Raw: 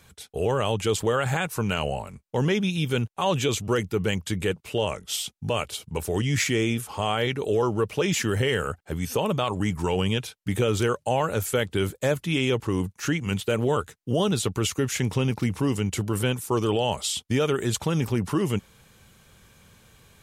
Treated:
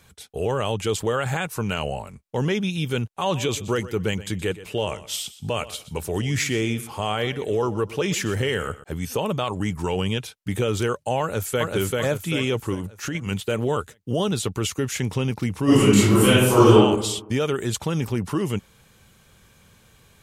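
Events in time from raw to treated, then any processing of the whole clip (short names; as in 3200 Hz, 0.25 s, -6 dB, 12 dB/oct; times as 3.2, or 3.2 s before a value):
3.1–8.84 feedback echo 0.123 s, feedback 25%, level -16 dB
11.21–11.72 echo throw 0.39 s, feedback 45%, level -1.5 dB
12.74–13.15 compressor, threshold -24 dBFS
15.64–16.74 reverb throw, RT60 0.93 s, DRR -12 dB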